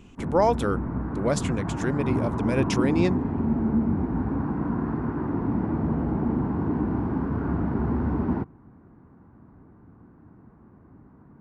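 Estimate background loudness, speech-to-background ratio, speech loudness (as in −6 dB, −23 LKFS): −27.0 LKFS, 0.0 dB, −27.0 LKFS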